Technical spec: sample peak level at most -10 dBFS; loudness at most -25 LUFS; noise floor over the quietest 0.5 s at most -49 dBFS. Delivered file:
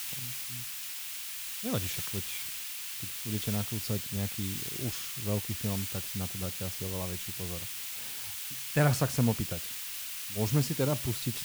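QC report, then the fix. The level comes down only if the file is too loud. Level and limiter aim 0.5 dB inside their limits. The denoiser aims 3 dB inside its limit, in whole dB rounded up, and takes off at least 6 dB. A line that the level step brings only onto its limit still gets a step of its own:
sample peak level -14.5 dBFS: pass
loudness -32.5 LUFS: pass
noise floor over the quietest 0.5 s -39 dBFS: fail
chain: noise reduction 13 dB, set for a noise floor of -39 dBFS

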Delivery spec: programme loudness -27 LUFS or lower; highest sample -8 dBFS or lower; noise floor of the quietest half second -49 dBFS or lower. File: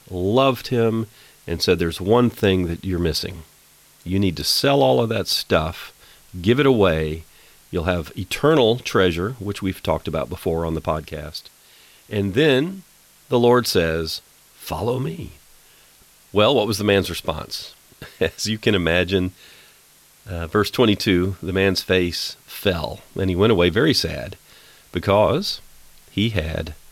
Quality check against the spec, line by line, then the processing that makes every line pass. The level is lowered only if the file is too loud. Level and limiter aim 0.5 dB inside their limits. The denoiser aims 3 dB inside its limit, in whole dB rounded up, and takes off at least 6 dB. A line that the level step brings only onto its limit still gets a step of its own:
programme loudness -20.5 LUFS: fail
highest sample -5.0 dBFS: fail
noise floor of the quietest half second -52 dBFS: pass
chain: trim -7 dB

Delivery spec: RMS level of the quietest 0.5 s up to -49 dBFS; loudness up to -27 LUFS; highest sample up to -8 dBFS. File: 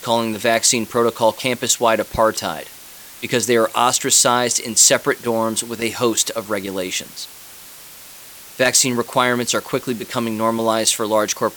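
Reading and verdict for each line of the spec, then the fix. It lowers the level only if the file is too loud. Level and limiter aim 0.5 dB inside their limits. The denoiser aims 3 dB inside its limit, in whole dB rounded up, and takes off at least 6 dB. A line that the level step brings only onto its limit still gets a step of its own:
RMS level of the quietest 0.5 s -40 dBFS: fail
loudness -17.5 LUFS: fail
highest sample -2.5 dBFS: fail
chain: trim -10 dB

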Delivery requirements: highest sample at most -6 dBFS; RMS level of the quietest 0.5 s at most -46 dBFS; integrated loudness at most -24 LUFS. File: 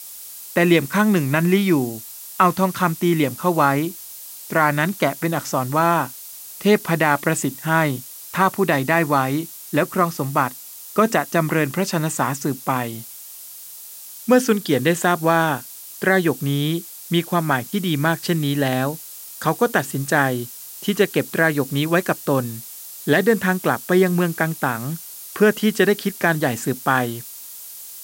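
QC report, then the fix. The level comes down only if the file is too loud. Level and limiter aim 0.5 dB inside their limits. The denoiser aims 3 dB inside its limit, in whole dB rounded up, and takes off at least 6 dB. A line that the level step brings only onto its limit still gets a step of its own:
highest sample -3.0 dBFS: fail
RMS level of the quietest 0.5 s -38 dBFS: fail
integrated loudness -20.0 LUFS: fail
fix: noise reduction 7 dB, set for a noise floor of -38 dBFS; trim -4.5 dB

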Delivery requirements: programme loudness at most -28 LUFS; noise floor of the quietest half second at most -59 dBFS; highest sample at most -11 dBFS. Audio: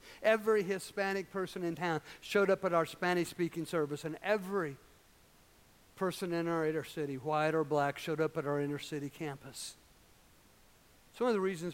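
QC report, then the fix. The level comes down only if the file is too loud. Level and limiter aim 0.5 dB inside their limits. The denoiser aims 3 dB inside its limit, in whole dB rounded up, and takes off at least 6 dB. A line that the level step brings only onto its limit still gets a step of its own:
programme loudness -34.5 LUFS: pass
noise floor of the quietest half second -64 dBFS: pass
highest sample -15.0 dBFS: pass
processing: none needed

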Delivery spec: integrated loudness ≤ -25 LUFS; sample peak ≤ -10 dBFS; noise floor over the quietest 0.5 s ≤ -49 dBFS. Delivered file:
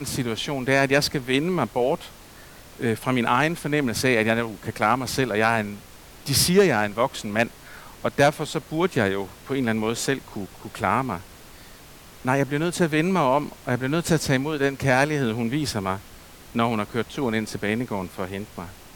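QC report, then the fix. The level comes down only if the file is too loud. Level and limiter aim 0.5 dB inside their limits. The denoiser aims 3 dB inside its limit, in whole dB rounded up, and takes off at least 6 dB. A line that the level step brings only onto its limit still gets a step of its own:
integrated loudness -23.5 LUFS: fail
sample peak -5.0 dBFS: fail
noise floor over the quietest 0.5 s -46 dBFS: fail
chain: noise reduction 6 dB, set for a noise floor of -46 dBFS; trim -2 dB; peak limiter -10.5 dBFS

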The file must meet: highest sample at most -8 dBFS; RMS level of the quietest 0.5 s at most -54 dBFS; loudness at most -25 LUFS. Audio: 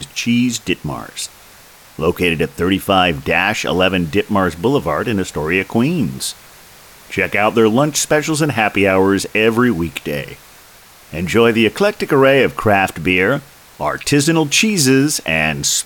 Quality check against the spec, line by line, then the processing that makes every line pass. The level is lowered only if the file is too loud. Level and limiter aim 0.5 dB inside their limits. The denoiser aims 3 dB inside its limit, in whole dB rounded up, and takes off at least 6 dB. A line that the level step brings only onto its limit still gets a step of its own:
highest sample -1.5 dBFS: fail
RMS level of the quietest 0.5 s -43 dBFS: fail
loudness -15.5 LUFS: fail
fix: noise reduction 6 dB, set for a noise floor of -43 dBFS; trim -10 dB

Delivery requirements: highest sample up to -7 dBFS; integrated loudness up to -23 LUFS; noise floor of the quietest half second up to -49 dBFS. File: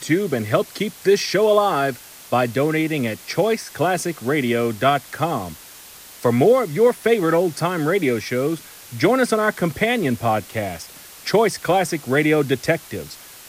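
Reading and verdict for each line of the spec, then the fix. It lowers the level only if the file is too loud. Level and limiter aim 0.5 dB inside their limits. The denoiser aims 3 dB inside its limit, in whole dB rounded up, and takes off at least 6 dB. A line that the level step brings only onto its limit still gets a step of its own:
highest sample -5.0 dBFS: fail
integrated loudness -20.0 LUFS: fail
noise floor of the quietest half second -42 dBFS: fail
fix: noise reduction 7 dB, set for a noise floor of -42 dBFS; trim -3.5 dB

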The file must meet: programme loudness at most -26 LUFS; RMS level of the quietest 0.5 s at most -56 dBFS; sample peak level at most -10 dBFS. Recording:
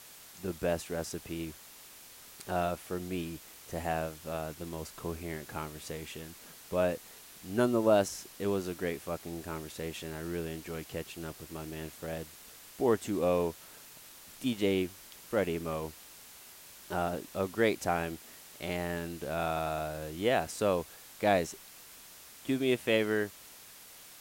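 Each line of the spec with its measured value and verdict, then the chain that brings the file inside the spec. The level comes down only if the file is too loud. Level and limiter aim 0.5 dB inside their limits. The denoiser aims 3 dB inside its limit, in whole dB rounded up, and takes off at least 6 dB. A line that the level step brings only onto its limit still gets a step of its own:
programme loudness -33.5 LUFS: pass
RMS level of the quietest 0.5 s -52 dBFS: fail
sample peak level -12.0 dBFS: pass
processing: noise reduction 7 dB, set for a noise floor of -52 dBFS

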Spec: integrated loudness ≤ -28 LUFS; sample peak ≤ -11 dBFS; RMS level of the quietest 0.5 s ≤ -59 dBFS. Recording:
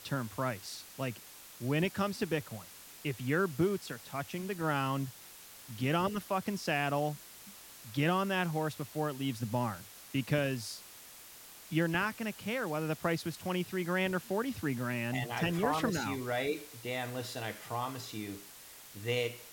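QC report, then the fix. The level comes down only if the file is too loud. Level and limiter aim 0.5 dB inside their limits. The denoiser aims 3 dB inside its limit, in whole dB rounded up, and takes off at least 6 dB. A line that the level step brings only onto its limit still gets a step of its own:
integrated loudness -34.5 LUFS: pass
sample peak -15.5 dBFS: pass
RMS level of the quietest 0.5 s -52 dBFS: fail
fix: noise reduction 10 dB, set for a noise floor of -52 dBFS

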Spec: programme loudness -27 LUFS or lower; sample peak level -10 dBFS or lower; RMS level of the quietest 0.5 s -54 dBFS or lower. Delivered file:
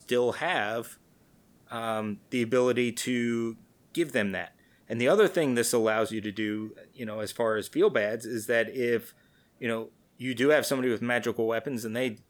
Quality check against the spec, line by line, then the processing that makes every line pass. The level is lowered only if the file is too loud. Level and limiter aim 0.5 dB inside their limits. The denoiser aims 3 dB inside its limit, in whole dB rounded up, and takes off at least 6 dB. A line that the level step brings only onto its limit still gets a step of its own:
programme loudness -28.0 LUFS: pass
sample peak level -11.0 dBFS: pass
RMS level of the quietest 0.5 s -62 dBFS: pass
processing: none needed

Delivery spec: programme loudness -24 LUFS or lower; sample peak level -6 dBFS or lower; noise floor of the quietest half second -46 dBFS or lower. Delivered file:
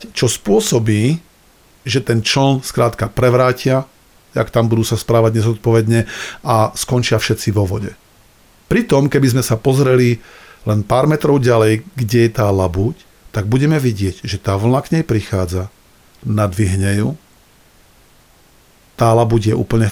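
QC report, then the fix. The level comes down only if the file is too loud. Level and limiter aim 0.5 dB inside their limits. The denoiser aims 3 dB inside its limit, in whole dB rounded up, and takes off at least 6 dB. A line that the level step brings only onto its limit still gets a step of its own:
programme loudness -15.5 LUFS: fail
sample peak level -2.5 dBFS: fail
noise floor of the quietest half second -49 dBFS: pass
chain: trim -9 dB

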